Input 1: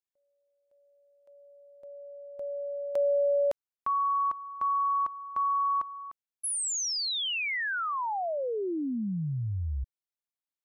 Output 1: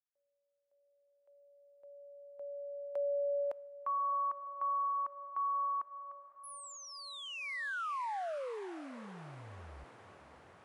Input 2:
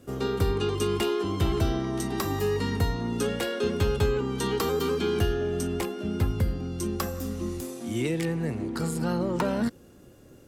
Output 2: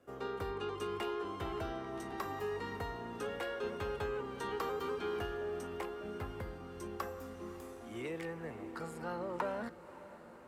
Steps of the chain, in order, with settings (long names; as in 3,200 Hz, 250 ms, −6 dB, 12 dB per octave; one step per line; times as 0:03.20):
three-way crossover with the lows and the highs turned down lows −14 dB, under 450 Hz, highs −13 dB, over 2,300 Hz
feedback delay with all-pass diffusion 549 ms, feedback 73%, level −15.5 dB
level −6 dB